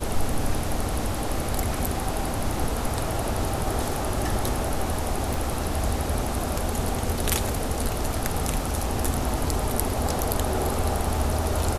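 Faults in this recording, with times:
0:05.34: click

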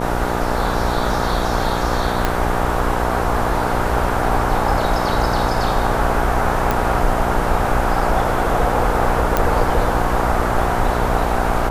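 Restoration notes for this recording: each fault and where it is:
mains buzz 60 Hz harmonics 16 −23 dBFS
0:02.25: click −3 dBFS
0:06.71: click
0:09.37: click −2 dBFS

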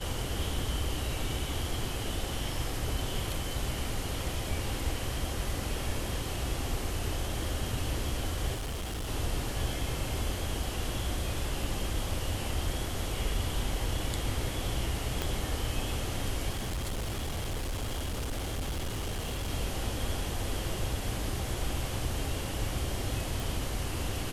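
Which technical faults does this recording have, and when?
0:08.54–0:09.09: clipping −32 dBFS
0:15.22: click −15 dBFS
0:16.52–0:19.51: clipping −30 dBFS
0:23.40: click

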